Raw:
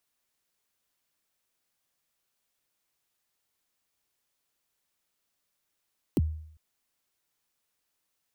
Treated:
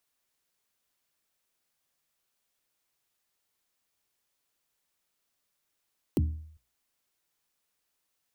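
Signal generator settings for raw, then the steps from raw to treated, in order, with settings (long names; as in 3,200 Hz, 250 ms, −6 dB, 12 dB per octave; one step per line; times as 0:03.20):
synth kick length 0.40 s, from 400 Hz, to 78 Hz, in 32 ms, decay 0.65 s, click on, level −18.5 dB
mains-hum notches 60/120/180/240/300 Hz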